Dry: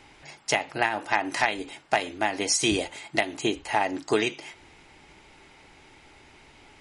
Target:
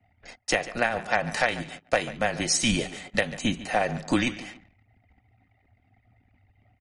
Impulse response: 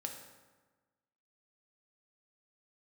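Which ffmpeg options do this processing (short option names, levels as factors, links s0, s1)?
-af "aecho=1:1:143|286|429:0.158|0.0602|0.0229,anlmdn=0.0251,afreqshift=-120"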